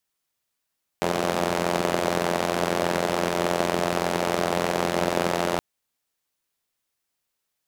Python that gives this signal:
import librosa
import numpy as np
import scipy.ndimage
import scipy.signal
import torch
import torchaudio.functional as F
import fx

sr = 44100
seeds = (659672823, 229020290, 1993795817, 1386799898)

y = fx.engine_four(sr, seeds[0], length_s=4.57, rpm=2600, resonances_hz=(210.0, 380.0, 570.0))